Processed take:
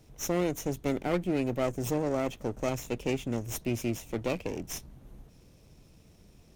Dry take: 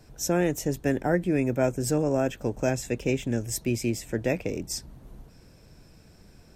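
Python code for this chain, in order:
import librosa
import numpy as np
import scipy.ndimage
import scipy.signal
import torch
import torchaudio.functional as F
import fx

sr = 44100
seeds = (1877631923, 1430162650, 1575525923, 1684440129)

y = fx.lower_of_two(x, sr, delay_ms=0.31)
y = y * 10.0 ** (-3.5 / 20.0)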